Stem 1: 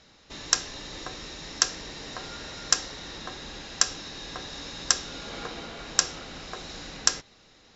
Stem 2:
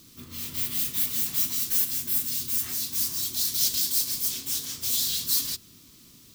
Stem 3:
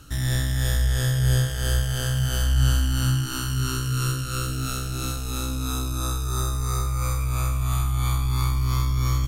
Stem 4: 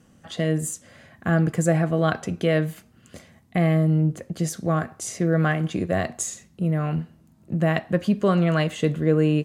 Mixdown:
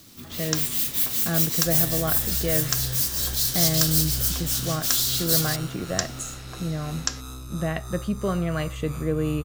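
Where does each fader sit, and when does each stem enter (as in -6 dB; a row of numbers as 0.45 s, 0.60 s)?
-4.5 dB, +2.5 dB, -11.0 dB, -6.0 dB; 0.00 s, 0.00 s, 1.55 s, 0.00 s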